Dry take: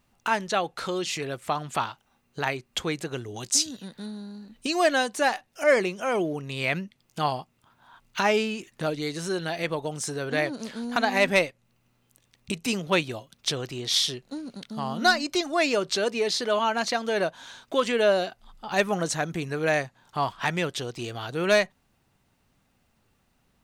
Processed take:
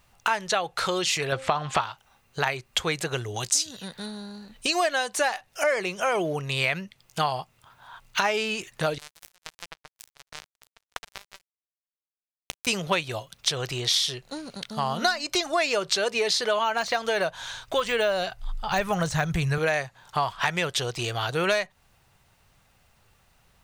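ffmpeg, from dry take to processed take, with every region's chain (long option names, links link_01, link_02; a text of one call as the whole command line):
ffmpeg -i in.wav -filter_complex "[0:a]asettb=1/sr,asplit=3[link_01][link_02][link_03];[link_01]atrim=end=1.324[link_04];[link_02]atrim=start=1.32:end=1.81,asetpts=PTS-STARTPTS,afade=type=in:duration=0.004:curve=qsin,afade=type=out:start_time=0.486:duration=0.004:curve=qsin,lowpass=4700,bandreject=frequency=265.2:width_type=h:width=4,bandreject=frequency=530.4:width_type=h:width=4,bandreject=frequency=795.6:width_type=h:width=4,bandreject=frequency=1060.8:width_type=h:width=4,bandreject=frequency=1326:width_type=h:width=4,bandreject=frequency=1591.2:width_type=h:width=4,bandreject=frequency=1856.4:width_type=h:width=4,bandreject=frequency=2121.6:width_type=h:width=4,bandreject=frequency=2386.8:width_type=h:width=4,bandreject=frequency=2652:width_type=h:width=4,bandreject=frequency=2917.2:width_type=h:width=4,bandreject=frequency=3182.4:width_type=h:width=4,bandreject=frequency=3447.6:width_type=h:width=4,bandreject=frequency=3712.8:width_type=h:width=4,bandreject=frequency=3978:width_type=h:width=4,bandreject=frequency=4243.2:width_type=h:width=4,bandreject=frequency=4508.4:width_type=h:width=4,bandreject=frequency=4773.6:width_type=h:width=4,bandreject=frequency=5038.8:width_type=h:width=4,bandreject=frequency=5304:width_type=h:width=4,bandreject=frequency=5569.2:width_type=h:width=4,bandreject=frequency=5834.4:width_type=h:width=4,bandreject=frequency=6099.6:width_type=h:width=4,bandreject=frequency=6364.8:width_type=h:width=4,bandreject=frequency=6630:width_type=h:width=4,bandreject=frequency=6895.2:width_type=h:width=4,bandreject=frequency=7160.4:width_type=h:width=4,bandreject=frequency=7425.6:width_type=h:width=4,bandreject=frequency=7690.8:width_type=h:width=4,bandreject=frequency=7956:width_type=h:width=4,bandreject=frequency=8221.2:width_type=h:width=4,bandreject=frequency=8486.4:width_type=h:width=4,bandreject=frequency=8751.6:width_type=h:width=4,bandreject=frequency=9016.8:width_type=h:width=4,bandreject=frequency=9282:width_type=h:width=4,acontrast=39[link_05];[link_03]atrim=start=1.806[link_06];[link_04][link_05]acrossfade=duration=0.004:curve1=hsin:curve2=qsin[link_07];[link_07][link_06]acrossfade=duration=0.004:curve1=qsin:curve2=hsin,asettb=1/sr,asplit=3[link_08][link_09][link_10];[link_08]atrim=end=8.984[link_11];[link_09]atrim=start=8.98:end=12.67,asetpts=PTS-STARTPTS,afade=type=in:duration=0.004:curve=qsin,afade=type=out:start_time=3.686:duration=0.004:curve=qsin,bandreject=frequency=380:width=11,acompressor=threshold=-31dB:ratio=16:attack=3.2:release=140:knee=1:detection=peak,acrusher=bits=3:mix=0:aa=0.5[link_12];[link_10]atrim=start=12.666[link_13];[link_11][link_12]acrossfade=duration=0.004:curve1=hsin:curve2=qsin[link_14];[link_14][link_13]acrossfade=duration=0.004:curve1=qsin:curve2=hsin,asettb=1/sr,asplit=3[link_15][link_16][link_17];[link_15]atrim=end=16.564[link_18];[link_16]atrim=start=16.56:end=19.58,asetpts=PTS-STARTPTS,afade=type=in:duration=0.004:curve=qsin,afade=type=out:start_time=3.016:duration=0.004:curve=qsin,deesser=0.85,asubboost=boost=8:cutoff=130[link_19];[link_17]atrim=start=19.576[link_20];[link_18][link_19]acrossfade=duration=0.004:curve1=hsin:curve2=qsin[link_21];[link_21][link_20]acrossfade=duration=0.004:curve1=qsin:curve2=hsin,equalizer=frequency=260:width_type=o:width=1.1:gain=-12.5,acompressor=threshold=-29dB:ratio=6,volume=8dB" out.wav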